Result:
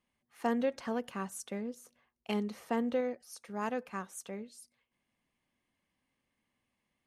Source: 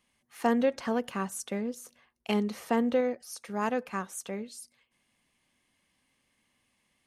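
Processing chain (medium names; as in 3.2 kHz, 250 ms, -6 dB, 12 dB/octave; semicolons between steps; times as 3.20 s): tape noise reduction on one side only decoder only; trim -5.5 dB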